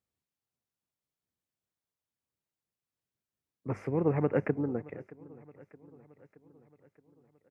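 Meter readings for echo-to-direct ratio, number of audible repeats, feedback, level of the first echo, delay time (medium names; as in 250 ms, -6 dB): -19.0 dB, 3, 58%, -21.0 dB, 622 ms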